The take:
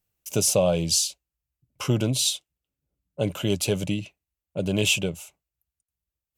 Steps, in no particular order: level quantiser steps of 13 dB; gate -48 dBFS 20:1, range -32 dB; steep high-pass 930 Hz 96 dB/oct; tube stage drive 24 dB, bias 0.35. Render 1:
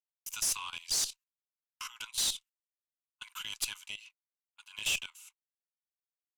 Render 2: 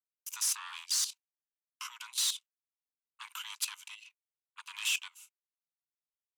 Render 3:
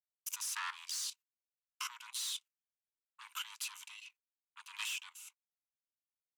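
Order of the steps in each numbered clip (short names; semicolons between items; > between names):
steep high-pass > gate > level quantiser > tube stage; level quantiser > tube stage > gate > steep high-pass; gate > tube stage > steep high-pass > level quantiser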